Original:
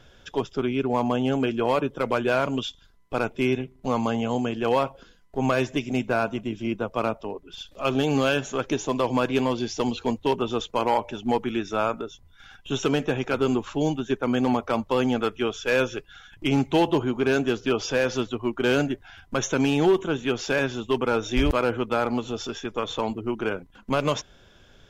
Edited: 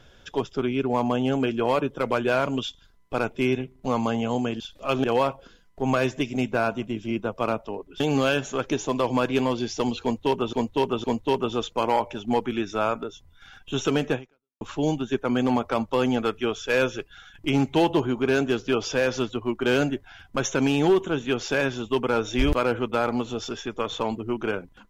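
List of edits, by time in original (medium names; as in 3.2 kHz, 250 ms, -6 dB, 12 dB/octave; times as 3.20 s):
7.56–8.00 s: move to 4.60 s
10.02–10.53 s: loop, 3 plays
13.13–13.59 s: fade out exponential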